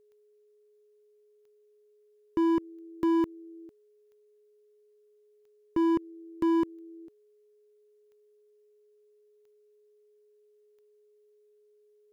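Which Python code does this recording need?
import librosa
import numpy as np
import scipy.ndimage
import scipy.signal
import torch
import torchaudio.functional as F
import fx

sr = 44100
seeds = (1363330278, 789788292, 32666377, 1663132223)

y = fx.fix_declip(x, sr, threshold_db=-22.5)
y = fx.fix_declick_ar(y, sr, threshold=10.0)
y = fx.notch(y, sr, hz=420.0, q=30.0)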